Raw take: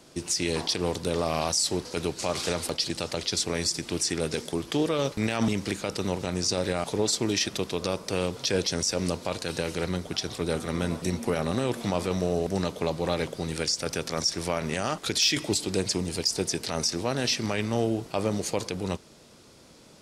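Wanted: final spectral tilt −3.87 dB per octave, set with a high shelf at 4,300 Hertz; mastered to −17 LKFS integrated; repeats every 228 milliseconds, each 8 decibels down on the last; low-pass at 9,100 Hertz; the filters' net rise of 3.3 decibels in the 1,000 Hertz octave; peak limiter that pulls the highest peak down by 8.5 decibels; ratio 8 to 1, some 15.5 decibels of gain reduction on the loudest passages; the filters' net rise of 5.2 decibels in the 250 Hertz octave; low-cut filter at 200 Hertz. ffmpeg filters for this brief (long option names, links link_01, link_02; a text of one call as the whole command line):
ffmpeg -i in.wav -af "highpass=200,lowpass=9100,equalizer=frequency=250:width_type=o:gain=9,equalizer=frequency=1000:width_type=o:gain=4,highshelf=frequency=4300:gain=-3.5,acompressor=threshold=-34dB:ratio=8,alimiter=level_in=5dB:limit=-24dB:level=0:latency=1,volume=-5dB,aecho=1:1:228|456|684|912|1140:0.398|0.159|0.0637|0.0255|0.0102,volume=22.5dB" out.wav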